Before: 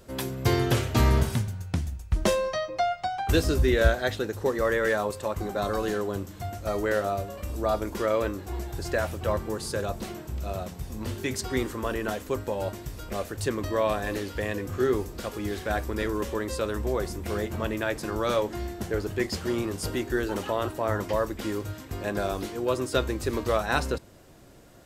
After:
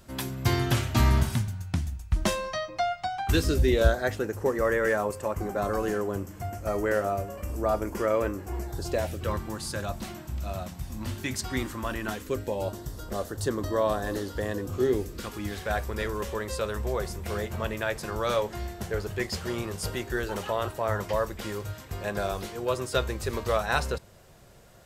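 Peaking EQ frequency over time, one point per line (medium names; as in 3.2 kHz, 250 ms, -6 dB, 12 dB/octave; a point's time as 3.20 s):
peaking EQ -13.5 dB 0.44 oct
3.27 s 460 Hz
4.10 s 3.8 kHz
8.60 s 3.8 kHz
9.47 s 440 Hz
12.02 s 440 Hz
12.79 s 2.4 kHz
14.59 s 2.4 kHz
15.63 s 290 Hz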